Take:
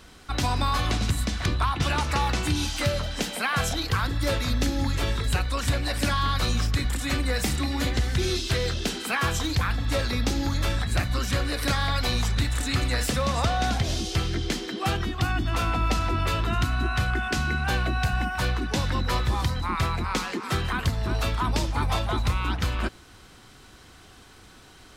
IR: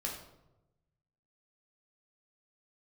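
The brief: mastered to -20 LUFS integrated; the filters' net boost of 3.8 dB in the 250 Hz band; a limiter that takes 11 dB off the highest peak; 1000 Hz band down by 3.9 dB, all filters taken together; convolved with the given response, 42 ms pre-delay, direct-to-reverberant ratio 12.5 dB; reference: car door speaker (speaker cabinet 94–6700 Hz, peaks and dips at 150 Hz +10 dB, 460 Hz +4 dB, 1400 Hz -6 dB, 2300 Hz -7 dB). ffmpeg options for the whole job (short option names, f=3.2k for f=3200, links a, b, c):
-filter_complex "[0:a]equalizer=f=250:t=o:g=3,equalizer=f=1k:t=o:g=-3.5,alimiter=limit=-23dB:level=0:latency=1,asplit=2[a][b];[1:a]atrim=start_sample=2205,adelay=42[c];[b][c]afir=irnorm=-1:irlink=0,volume=-14dB[d];[a][d]amix=inputs=2:normalize=0,highpass=94,equalizer=f=150:t=q:w=4:g=10,equalizer=f=460:t=q:w=4:g=4,equalizer=f=1.4k:t=q:w=4:g=-6,equalizer=f=2.3k:t=q:w=4:g=-7,lowpass=f=6.7k:w=0.5412,lowpass=f=6.7k:w=1.3066,volume=12.5dB"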